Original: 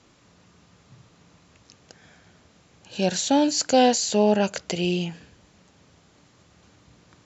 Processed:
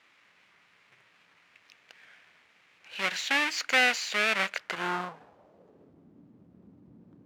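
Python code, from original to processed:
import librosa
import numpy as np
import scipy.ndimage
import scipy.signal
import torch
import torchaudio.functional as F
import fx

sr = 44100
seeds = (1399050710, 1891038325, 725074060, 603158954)

y = fx.halfwave_hold(x, sr)
y = fx.filter_sweep_bandpass(y, sr, from_hz=2200.0, to_hz=240.0, start_s=4.53, end_s=6.14, q=2.2)
y = fx.record_warp(y, sr, rpm=78.0, depth_cents=100.0)
y = F.gain(torch.from_numpy(y), 2.0).numpy()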